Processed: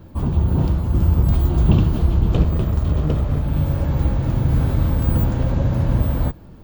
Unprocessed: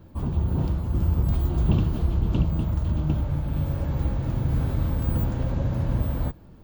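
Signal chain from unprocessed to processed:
0:02.34–0:03.42: lower of the sound and its delayed copy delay 1.6 ms
level +6.5 dB

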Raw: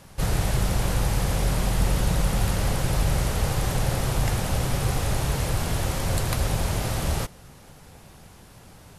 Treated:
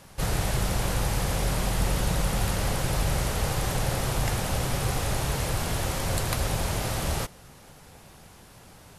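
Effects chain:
low-shelf EQ 280 Hz −4 dB

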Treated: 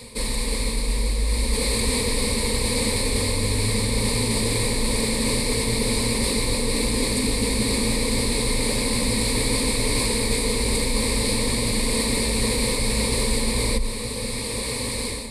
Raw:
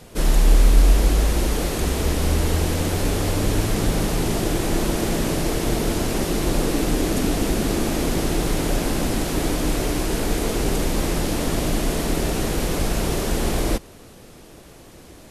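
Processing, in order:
automatic gain control gain up to 14 dB
EQ curve with evenly spaced ripples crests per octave 0.95, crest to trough 16 dB
reversed playback
downward compressor 4 to 1, threshold −23 dBFS, peak gain reduction 16 dB
reversed playback
high shelf with overshoot 1,900 Hz +6.5 dB, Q 1.5
notch filter 2,000 Hz, Q 15
on a send: delay that swaps between a low-pass and a high-pass 491 ms, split 1,200 Hz, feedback 55%, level −12 dB

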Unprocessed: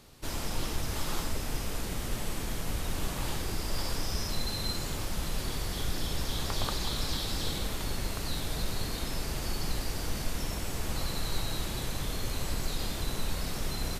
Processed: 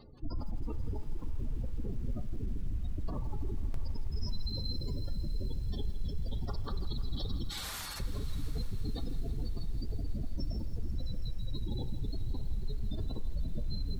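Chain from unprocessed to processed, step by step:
0:07.49–0:08.00: high-pass filter 1,100 Hz 12 dB per octave
gate on every frequency bin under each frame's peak −15 dB strong
dynamic equaliser 3,000 Hz, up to −5 dB, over −56 dBFS, Q 0.95
brickwall limiter −30 dBFS, peak gain reduction 33 dB
feedback delay with all-pass diffusion 677 ms, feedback 40%, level −16 dB
on a send at −11 dB: convolution reverb RT60 0.60 s, pre-delay 3 ms
on the sum: feedback echo at a low word length 163 ms, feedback 80%, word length 9 bits, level −15 dB
level +2.5 dB

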